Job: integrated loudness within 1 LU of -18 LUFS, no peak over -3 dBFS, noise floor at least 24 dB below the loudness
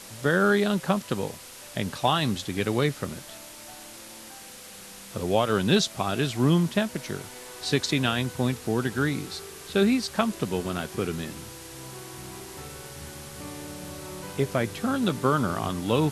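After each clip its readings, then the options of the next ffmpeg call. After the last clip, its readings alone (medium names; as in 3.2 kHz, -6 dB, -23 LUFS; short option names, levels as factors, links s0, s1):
noise floor -44 dBFS; noise floor target -51 dBFS; loudness -26.5 LUFS; peak level -8.0 dBFS; loudness target -18.0 LUFS
-> -af "afftdn=nr=7:nf=-44"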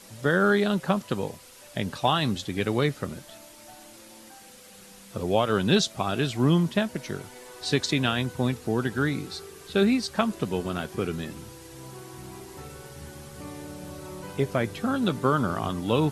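noise floor -49 dBFS; noise floor target -51 dBFS
-> -af "afftdn=nr=6:nf=-49"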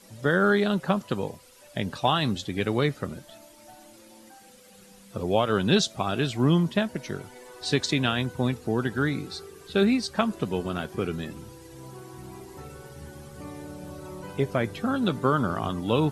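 noise floor -52 dBFS; loudness -26.5 LUFS; peak level -8.0 dBFS; loudness target -18.0 LUFS
-> -af "volume=2.66,alimiter=limit=0.708:level=0:latency=1"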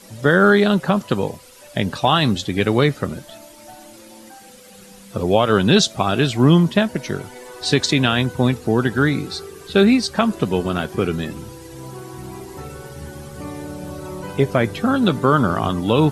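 loudness -18.5 LUFS; peak level -3.0 dBFS; noise floor -44 dBFS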